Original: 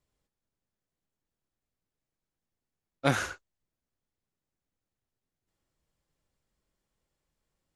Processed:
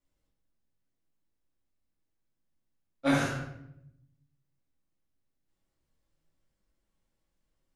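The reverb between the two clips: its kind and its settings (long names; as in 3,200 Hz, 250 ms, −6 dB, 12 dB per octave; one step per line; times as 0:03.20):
rectangular room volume 210 cubic metres, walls mixed, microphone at 2.4 metres
level −8.5 dB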